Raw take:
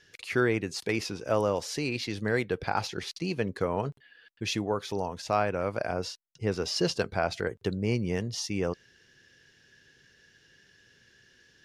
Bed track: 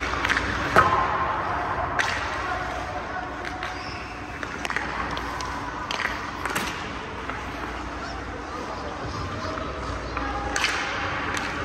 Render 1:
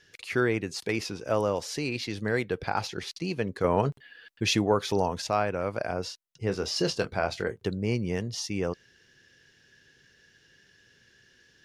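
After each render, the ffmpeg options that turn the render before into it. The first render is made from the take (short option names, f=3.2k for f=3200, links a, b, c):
-filter_complex "[0:a]asettb=1/sr,asplit=3[a][b][c];[a]atrim=end=3.644[d];[b]atrim=start=3.64:end=5.27,asetpts=PTS-STARTPTS,afade=t=in:d=0.004:c=qsin,afade=t=out:st=1.626:d=0.004:c=qsin,acontrast=46[e];[c]atrim=start=5.266[f];[d][e]acrossfade=d=0.004:c1=hsin:c2=qsin[g];[g][f]acrossfade=d=0.004:c1=qsin:c2=hsin,asettb=1/sr,asplit=3[h][i][j];[h]atrim=end=6.434[k];[i]atrim=start=6.43:end=7.67,asetpts=PTS-STARTPTS,afade=t=in:d=0.004:c=qsin,afade=t=out:st=1.236:d=0.004:c=qsin,asplit=2[l][m];[m]adelay=26,volume=-9.5dB[n];[l][n]amix=inputs=2:normalize=0,atrim=end_sample=54684[o];[j]atrim=start=7.666[p];[k][o]acrossfade=d=0.004:c1=hsin:c2=qsin[q];[q][p]acrossfade=d=0.004:c1=qsin:c2=hsin"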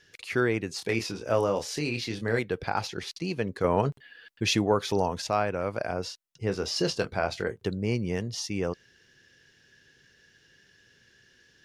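-filter_complex "[0:a]asettb=1/sr,asplit=3[a][b][c];[a]atrim=end=0.774[d];[b]atrim=start=0.77:end=2.39,asetpts=PTS-STARTPTS,afade=t=in:d=0.004:c=qsin,afade=t=out:st=1.616:d=0.004:c=qsin,asplit=2[e][f];[f]adelay=26,volume=-6dB[g];[e][g]amix=inputs=2:normalize=0,atrim=end_sample=71442[h];[c]atrim=start=2.386[i];[d][h]acrossfade=d=0.004:c1=hsin:c2=qsin[j];[j][i]acrossfade=d=0.004:c1=qsin:c2=hsin"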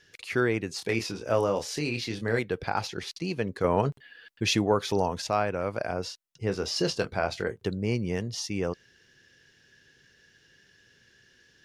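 -af anull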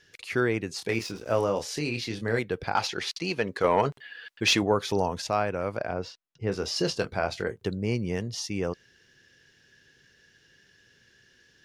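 -filter_complex "[0:a]asettb=1/sr,asplit=3[a][b][c];[a]atrim=end=0.924[d];[b]atrim=start=0.92:end=1.45,asetpts=PTS-STARTPTS,afade=t=in:d=0.004:c=qsin,afade=t=out:st=0.526:d=0.004:c=qsin,aeval=exprs='sgn(val(0))*max(abs(val(0))-0.00376,0)':c=same[e];[c]atrim=start=1.446[f];[d][e]acrossfade=d=0.004:c1=hsin:c2=qsin[g];[g][f]acrossfade=d=0.004:c1=qsin:c2=hsin,asettb=1/sr,asplit=3[h][i][j];[h]atrim=end=2.754[k];[i]atrim=start=2.75:end=4.63,asetpts=PTS-STARTPTS,afade=t=in:d=0.004:c=qsin,afade=t=out:st=1.876:d=0.004:c=qsin,asplit=2[l][m];[m]highpass=f=720:p=1,volume=12dB,asoftclip=type=tanh:threshold=-10dB[n];[l][n]amix=inputs=2:normalize=0,lowpass=f=5.7k:p=1,volume=-6dB[o];[j]atrim=start=4.626[p];[k][o]acrossfade=d=0.004:c1=hsin:c2=qsin[q];[q][p]acrossfade=d=0.004:c1=qsin:c2=hsin,asettb=1/sr,asplit=3[r][s][t];[r]atrim=end=5.774[u];[s]atrim=start=5.77:end=6.52,asetpts=PTS-STARTPTS,afade=t=in:d=0.004:c=qsin,afade=t=out:st=0.746:d=0.004:c=qsin,adynamicsmooth=sensitivity=1.5:basefreq=4.3k[v];[t]atrim=start=6.516[w];[u][v]acrossfade=d=0.004:c1=hsin:c2=qsin[x];[x][w]acrossfade=d=0.004:c1=qsin:c2=hsin"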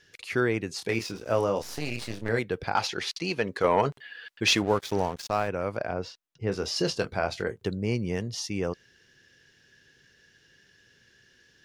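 -filter_complex "[0:a]asettb=1/sr,asplit=3[a][b][c];[a]atrim=end=1.624[d];[b]atrim=start=1.62:end=2.29,asetpts=PTS-STARTPTS,afade=t=in:d=0.004:c=qsin,afade=t=out:st=0.666:d=0.004:c=qsin,aeval=exprs='max(val(0),0)':c=same[e];[c]atrim=start=2.286[f];[d][e]acrossfade=d=0.004:c1=hsin:c2=qsin[g];[g][f]acrossfade=d=0.004:c1=qsin:c2=hsin,asettb=1/sr,asplit=3[h][i][j];[h]atrim=end=4.554[k];[i]atrim=start=4.55:end=5.48,asetpts=PTS-STARTPTS,afade=t=in:d=0.004:c=qsin,afade=t=out:st=0.926:d=0.004:c=qsin,aeval=exprs='sgn(val(0))*max(abs(val(0))-0.0112,0)':c=same[l];[j]atrim=start=5.476[m];[k][l]acrossfade=d=0.004:c1=hsin:c2=qsin[n];[n][m]acrossfade=d=0.004:c1=qsin:c2=hsin"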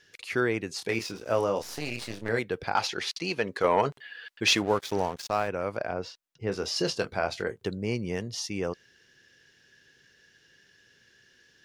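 -af "lowshelf=f=190:g=-5.5"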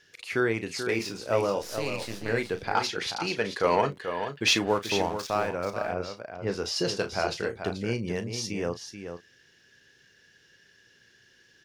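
-filter_complex "[0:a]asplit=2[a][b];[b]adelay=35,volume=-11dB[c];[a][c]amix=inputs=2:normalize=0,aecho=1:1:435:0.376"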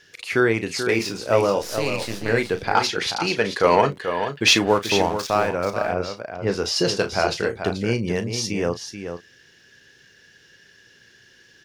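-af "volume=7dB"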